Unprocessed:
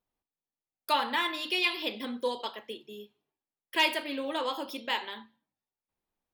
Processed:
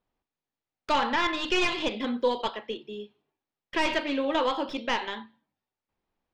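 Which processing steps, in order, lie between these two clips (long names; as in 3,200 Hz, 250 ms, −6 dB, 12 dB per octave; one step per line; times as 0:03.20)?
stylus tracing distortion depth 0.19 ms
brickwall limiter −20.5 dBFS, peak gain reduction 8 dB
high-frequency loss of the air 160 metres
level +7 dB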